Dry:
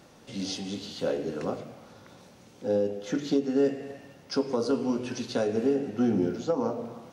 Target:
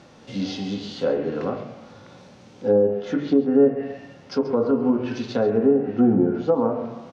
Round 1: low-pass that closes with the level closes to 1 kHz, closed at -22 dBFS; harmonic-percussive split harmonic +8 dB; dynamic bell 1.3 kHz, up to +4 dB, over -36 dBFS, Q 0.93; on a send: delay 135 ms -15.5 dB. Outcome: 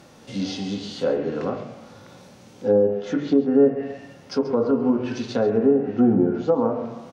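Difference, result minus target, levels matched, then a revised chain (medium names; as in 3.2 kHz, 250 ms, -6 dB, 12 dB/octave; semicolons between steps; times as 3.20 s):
8 kHz band +4.0 dB
low-pass that closes with the level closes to 1 kHz, closed at -22 dBFS; harmonic-percussive split harmonic +8 dB; dynamic bell 1.3 kHz, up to +4 dB, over -36 dBFS, Q 0.93; low-pass 5.7 kHz 12 dB/octave; on a send: delay 135 ms -15.5 dB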